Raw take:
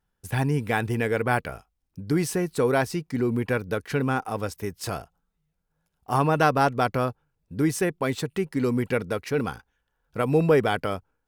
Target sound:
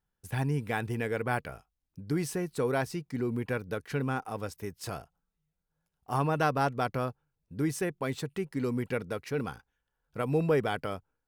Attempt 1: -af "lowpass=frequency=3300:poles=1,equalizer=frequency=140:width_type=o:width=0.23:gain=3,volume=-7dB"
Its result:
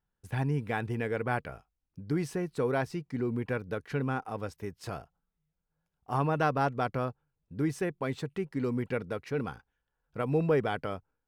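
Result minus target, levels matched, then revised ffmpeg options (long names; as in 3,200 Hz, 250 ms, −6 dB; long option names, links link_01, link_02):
4,000 Hz band −3.0 dB
-af "equalizer=frequency=140:width_type=o:width=0.23:gain=3,volume=-7dB"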